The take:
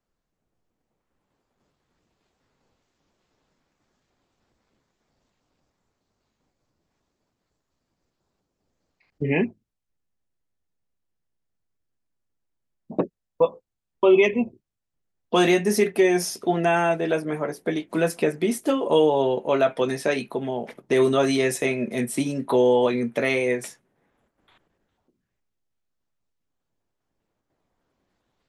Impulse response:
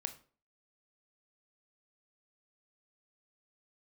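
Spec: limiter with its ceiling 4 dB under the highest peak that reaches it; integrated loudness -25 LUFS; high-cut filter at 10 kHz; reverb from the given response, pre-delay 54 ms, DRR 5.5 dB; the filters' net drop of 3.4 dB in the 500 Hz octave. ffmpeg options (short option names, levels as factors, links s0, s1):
-filter_complex "[0:a]lowpass=10000,equalizer=f=500:t=o:g=-4.5,alimiter=limit=0.2:level=0:latency=1,asplit=2[s0][s1];[1:a]atrim=start_sample=2205,adelay=54[s2];[s1][s2]afir=irnorm=-1:irlink=0,volume=0.631[s3];[s0][s3]amix=inputs=2:normalize=0"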